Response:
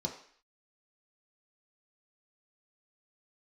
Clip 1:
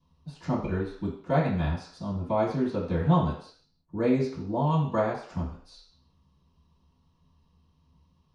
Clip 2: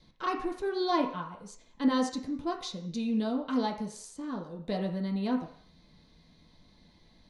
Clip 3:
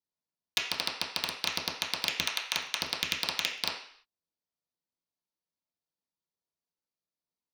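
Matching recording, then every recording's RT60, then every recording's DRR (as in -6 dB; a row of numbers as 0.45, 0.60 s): 2; 0.55, 0.55, 0.55 s; -14.5, -0.5, -6.5 dB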